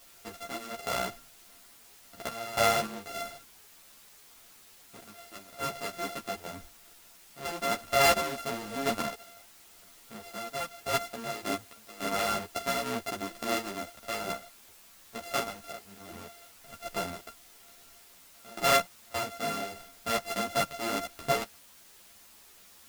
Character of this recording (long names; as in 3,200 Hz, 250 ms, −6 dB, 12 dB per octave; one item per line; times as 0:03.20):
a buzz of ramps at a fixed pitch in blocks of 64 samples
sample-and-hold tremolo, depth 95%
a quantiser's noise floor 10 bits, dither triangular
a shimmering, thickened sound